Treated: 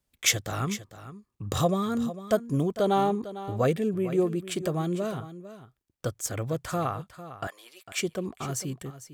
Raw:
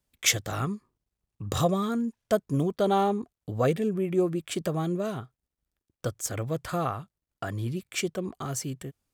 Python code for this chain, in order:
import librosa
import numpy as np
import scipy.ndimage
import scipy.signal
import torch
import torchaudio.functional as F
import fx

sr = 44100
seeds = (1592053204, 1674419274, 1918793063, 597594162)

y = fx.highpass(x, sr, hz=650.0, slope=24, at=(7.47, 7.97))
y = y + 10.0 ** (-14.0 / 20.0) * np.pad(y, (int(451 * sr / 1000.0), 0))[:len(y)]